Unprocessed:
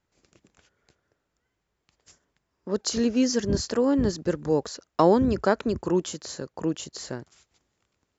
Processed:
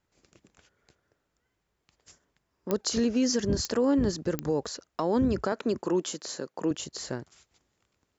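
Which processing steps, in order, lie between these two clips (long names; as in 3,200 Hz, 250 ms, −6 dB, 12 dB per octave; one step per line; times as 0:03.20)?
0:05.52–0:06.71: high-pass filter 210 Hz 12 dB per octave
brickwall limiter −17.5 dBFS, peak gain reduction 11 dB
digital clicks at 0:02.71/0:03.65/0:04.39, −14 dBFS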